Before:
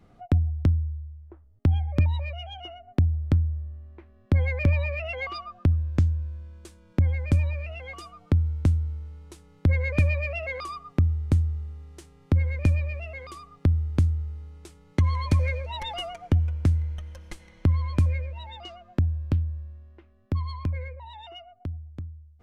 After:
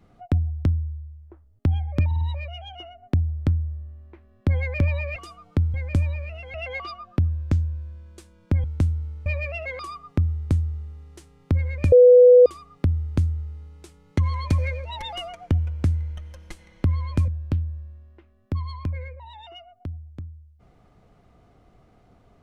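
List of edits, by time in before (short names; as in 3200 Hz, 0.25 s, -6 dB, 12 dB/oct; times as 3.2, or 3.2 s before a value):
2.06 stutter 0.05 s, 4 plays
5.01–7.11 swap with 7.91–8.49
9.11–10.07 cut
12.73–13.27 bleep 495 Hz -7.5 dBFS
18.09–19.08 cut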